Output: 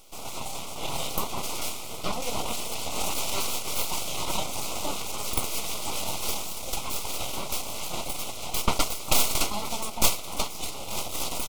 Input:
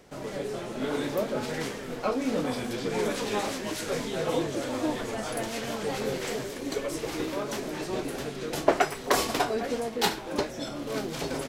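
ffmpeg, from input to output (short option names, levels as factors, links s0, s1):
-filter_complex "[0:a]tiltshelf=f=850:g=-3.5,asplit=4[s0][s1][s2][s3];[s1]adelay=195,afreqshift=41,volume=0.0708[s4];[s2]adelay=390,afreqshift=82,volume=0.0367[s5];[s3]adelay=585,afreqshift=123,volume=0.0191[s6];[s0][s4][s5][s6]amix=inputs=4:normalize=0,acontrast=48,aexciter=amount=2.8:drive=0.9:freq=2700,aeval=exprs='abs(val(0))':c=same,asetrate=41625,aresample=44100,atempo=1.05946,asuperstop=centerf=1700:order=4:qfactor=2.1,equalizer=f=670:w=1:g=3.5,volume=0.596"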